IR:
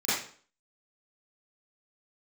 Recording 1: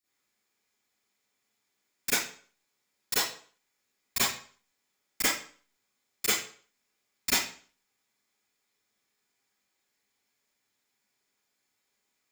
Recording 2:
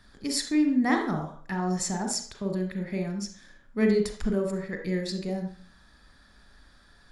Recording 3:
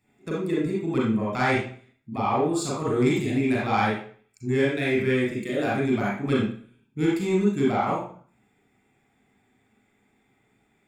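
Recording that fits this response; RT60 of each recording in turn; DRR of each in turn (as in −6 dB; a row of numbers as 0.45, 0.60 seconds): 1; 0.45, 0.45, 0.45 seconds; −14.5, 4.0, −6.0 decibels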